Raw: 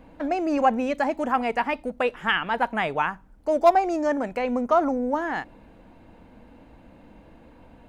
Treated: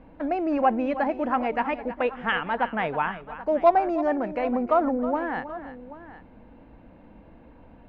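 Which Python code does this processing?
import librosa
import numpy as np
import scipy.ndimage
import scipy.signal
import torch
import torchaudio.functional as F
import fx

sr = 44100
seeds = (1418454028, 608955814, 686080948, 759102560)

y = fx.air_absorb(x, sr, metres=320.0)
y = fx.echo_multitap(y, sr, ms=(318, 782), db=(-13.5, -16.5))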